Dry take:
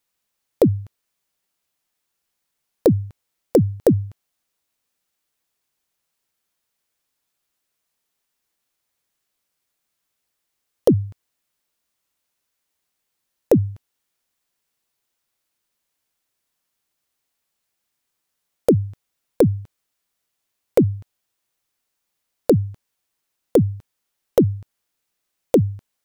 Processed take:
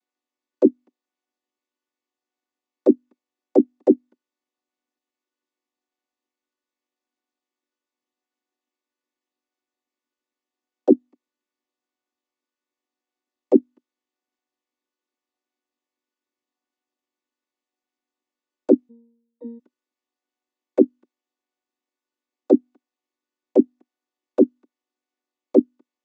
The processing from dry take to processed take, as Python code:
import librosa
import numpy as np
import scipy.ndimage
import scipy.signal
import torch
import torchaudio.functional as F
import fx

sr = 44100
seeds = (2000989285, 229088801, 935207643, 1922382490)

y = fx.chord_vocoder(x, sr, chord='minor triad', root=59)
y = fx.octave_resonator(y, sr, note='A#', decay_s=0.71, at=(18.89, 19.58), fade=0.02)